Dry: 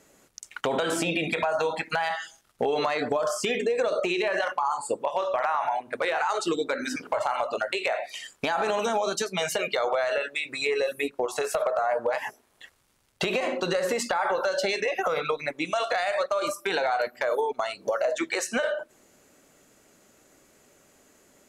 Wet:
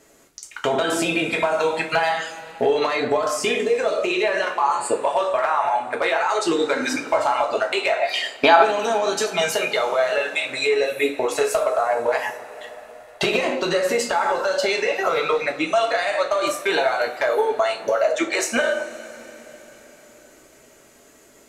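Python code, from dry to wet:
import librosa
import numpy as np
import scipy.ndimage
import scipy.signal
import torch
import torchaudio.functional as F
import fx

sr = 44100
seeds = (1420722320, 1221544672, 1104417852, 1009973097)

y = fx.spec_box(x, sr, start_s=8.02, length_s=0.61, low_hz=240.0, high_hz=5100.0, gain_db=10)
y = fx.rev_double_slope(y, sr, seeds[0], early_s=0.28, late_s=4.4, knee_db=-22, drr_db=0.5)
y = fx.rider(y, sr, range_db=3, speed_s=0.5)
y = F.gain(torch.from_numpy(y), 2.5).numpy()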